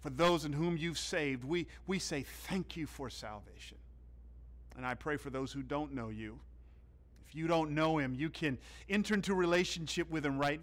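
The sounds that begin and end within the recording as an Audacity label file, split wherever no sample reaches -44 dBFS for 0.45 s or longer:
4.720000	6.380000	sound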